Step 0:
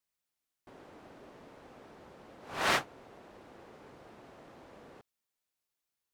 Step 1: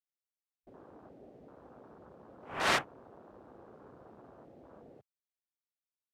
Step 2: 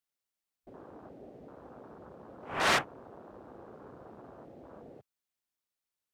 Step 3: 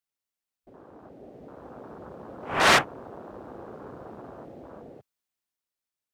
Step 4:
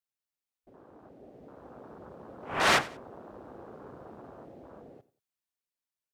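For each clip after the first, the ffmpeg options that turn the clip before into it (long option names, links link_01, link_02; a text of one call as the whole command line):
ffmpeg -i in.wav -af "afwtdn=0.00316" out.wav
ffmpeg -i in.wav -af "asoftclip=type=tanh:threshold=-23dB,volume=4.5dB" out.wav
ffmpeg -i in.wav -af "dynaudnorm=framelen=220:gausssize=13:maxgain=9.5dB,volume=-1.5dB" out.wav
ffmpeg -i in.wav -af "aecho=1:1:92|184:0.119|0.0333,volume=-5dB" out.wav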